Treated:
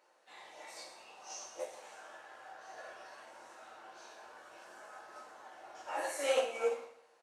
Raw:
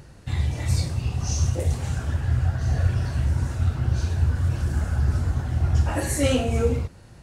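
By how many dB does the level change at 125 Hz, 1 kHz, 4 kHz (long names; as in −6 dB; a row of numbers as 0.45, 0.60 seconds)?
below −40 dB, −6.5 dB, −10.5 dB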